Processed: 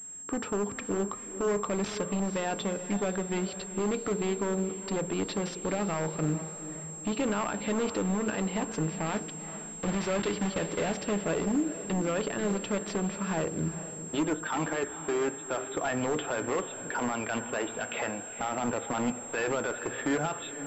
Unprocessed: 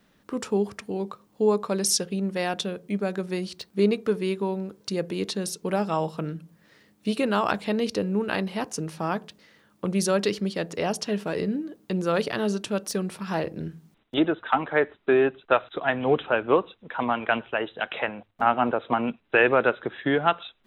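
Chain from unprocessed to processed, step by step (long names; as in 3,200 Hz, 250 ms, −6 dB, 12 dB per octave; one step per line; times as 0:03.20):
0:09.06–0:10.95: one scale factor per block 3 bits
in parallel at −2 dB: compressor whose output falls as the input rises −25 dBFS
on the sum: brickwall limiter −14.5 dBFS, peak gain reduction 11 dB
wave folding −18.5 dBFS
feedback delay with all-pass diffusion 456 ms, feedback 47%, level −12 dB
on a send at −12.5 dB: convolution reverb RT60 0.45 s, pre-delay 3 ms
on the sum: switching amplifier with a slow clock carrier 7,500 Hz
level −5 dB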